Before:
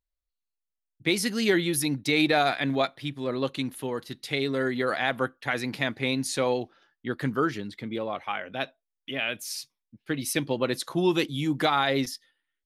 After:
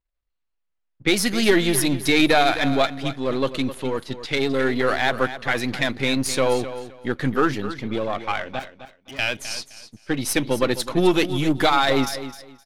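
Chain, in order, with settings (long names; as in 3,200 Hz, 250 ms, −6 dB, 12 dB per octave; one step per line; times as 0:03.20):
gain on one half-wave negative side −7 dB
low-pass that shuts in the quiet parts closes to 2,800 Hz, open at −28 dBFS
0:08.59–0:09.19: tube saturation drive 43 dB, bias 0.75
on a send: repeating echo 259 ms, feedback 22%, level −12.5 dB
on the sum: level +8.5 dB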